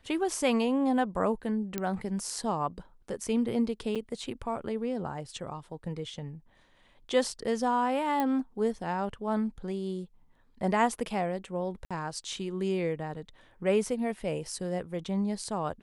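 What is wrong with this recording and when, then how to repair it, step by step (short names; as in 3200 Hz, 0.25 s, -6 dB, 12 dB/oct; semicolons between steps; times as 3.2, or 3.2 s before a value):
1.78 pop -16 dBFS
3.95–3.96 gap 6.5 ms
8.2 pop -16 dBFS
11.85–11.91 gap 56 ms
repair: de-click; interpolate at 3.95, 6.5 ms; interpolate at 11.85, 56 ms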